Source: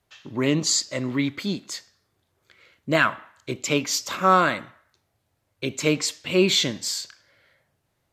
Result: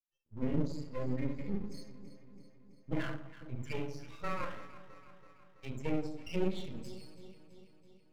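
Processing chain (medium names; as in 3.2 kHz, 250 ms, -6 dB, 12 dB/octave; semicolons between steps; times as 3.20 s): expander on every frequency bin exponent 3; compression 8:1, threshold -34 dBFS, peak gain reduction 18.5 dB; treble shelf 9.5 kHz +7.5 dB; simulated room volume 730 m³, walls furnished, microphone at 4.3 m; low-pass that closes with the level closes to 1.8 kHz, closed at -31 dBFS; half-wave rectifier; bass shelf 380 Hz +4.5 dB; band-stop 730 Hz, Q 12; on a send: echo whose repeats swap between lows and highs 165 ms, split 910 Hz, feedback 77%, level -12.5 dB; on the sum: trim -3 dB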